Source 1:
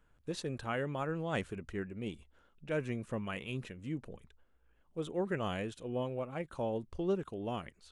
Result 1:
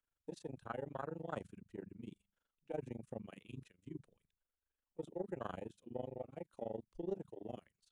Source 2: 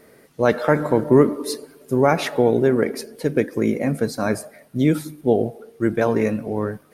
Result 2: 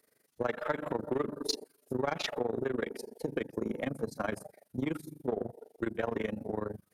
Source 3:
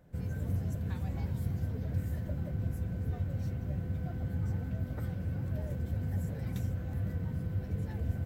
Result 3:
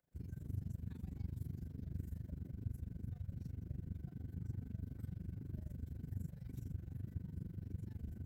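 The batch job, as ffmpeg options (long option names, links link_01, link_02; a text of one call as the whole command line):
ffmpeg -i in.wav -filter_complex "[0:a]lowshelf=frequency=380:gain=-5,bandreject=frequency=49.51:width_type=h:width=4,bandreject=frequency=99.02:width_type=h:width=4,bandreject=frequency=148.53:width_type=h:width=4,bandreject=frequency=198.04:width_type=h:width=4,acrossover=split=110|520|1100[link_01][link_02][link_03][link_04];[link_02]volume=17dB,asoftclip=hard,volume=-17dB[link_05];[link_01][link_05][link_03][link_04]amix=inputs=4:normalize=0,tremolo=f=24:d=0.889,afwtdn=0.0126,acompressor=threshold=-30dB:ratio=3,highshelf=frequency=3400:gain=10.5,aeval=exprs='0.141*(cos(1*acos(clip(val(0)/0.141,-1,1)))-cos(1*PI/2))+0.00447*(cos(4*acos(clip(val(0)/0.141,-1,1)))-cos(4*PI/2))':channel_layout=same,volume=-1.5dB" out.wav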